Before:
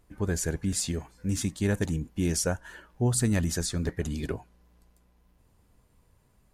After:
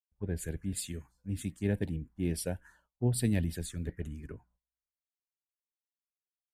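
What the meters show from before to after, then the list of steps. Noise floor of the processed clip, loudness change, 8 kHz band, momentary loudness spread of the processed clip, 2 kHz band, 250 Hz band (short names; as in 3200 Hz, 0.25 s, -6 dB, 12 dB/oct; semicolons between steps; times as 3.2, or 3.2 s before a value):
under -85 dBFS, -5.5 dB, -10.0 dB, 13 LU, -9.0 dB, -5.0 dB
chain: envelope phaser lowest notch 240 Hz, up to 1200 Hz, full sweep at -24.5 dBFS; gate -56 dBFS, range -16 dB; three-band expander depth 100%; gain -5.5 dB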